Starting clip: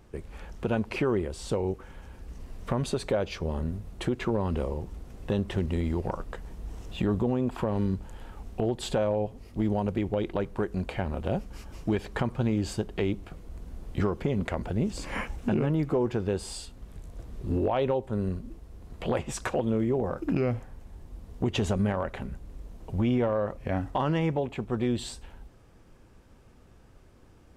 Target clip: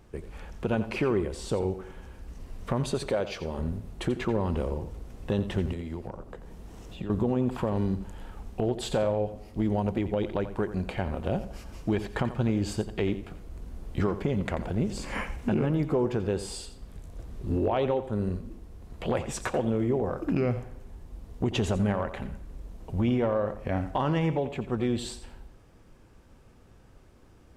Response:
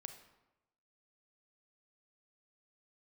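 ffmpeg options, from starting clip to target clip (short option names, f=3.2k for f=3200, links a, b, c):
-filter_complex "[0:a]asettb=1/sr,asplit=3[a][b][c];[a]atrim=end=3.094[d];[b]atrim=start=3.09:end=3.59,asetpts=PTS-STARTPTS,afade=t=in:d=0.004:c=qsin,afade=t=out:st=0.496:d=0.004:c=qsin,lowshelf=f=160:g=-8.5[e];[c]atrim=start=3.586[f];[d][e]acrossfade=d=0.004:c1=hsin:c2=qsin[g];[g][f]acrossfade=d=0.004:c1=qsin:c2=hsin,asettb=1/sr,asplit=3[h][i][j];[h]atrim=end=5.724[k];[i]atrim=start=5.72:end=7.1,asetpts=PTS-STARTPTS,afade=t=in:d=0.004:c=qsin,afade=t=out:st=1.376:d=0.004:c=qsin,acrossover=split=98|720[l][m][n];[l]acompressor=threshold=-45dB:ratio=4[o];[m]acompressor=threshold=-36dB:ratio=4[p];[n]acompressor=threshold=-50dB:ratio=4[q];[o][p][q]amix=inputs=3:normalize=0[r];[j]atrim=start=7.096[s];[k][r]acrossfade=d=0.004:c1=hsin:c2=qsin[t];[t][s]acrossfade=d=0.004:c1=qsin:c2=hsin,asplit=2[u][v];[1:a]atrim=start_sample=2205,adelay=87[w];[v][w]afir=irnorm=-1:irlink=0,volume=-7dB[x];[u][x]amix=inputs=2:normalize=0"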